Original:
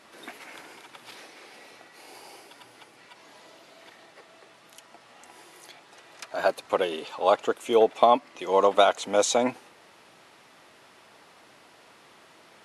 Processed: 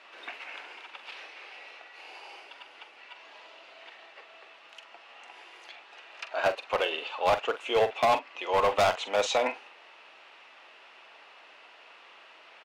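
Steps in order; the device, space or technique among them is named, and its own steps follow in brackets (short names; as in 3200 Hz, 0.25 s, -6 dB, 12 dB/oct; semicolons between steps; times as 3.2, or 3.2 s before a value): 1.1–2.29 HPF 250 Hz 12 dB/oct; megaphone (BPF 570–3700 Hz; bell 2700 Hz +8.5 dB 0.36 oct; hard clip -20 dBFS, distortion -9 dB; doubler 44 ms -11.5 dB); gain +1 dB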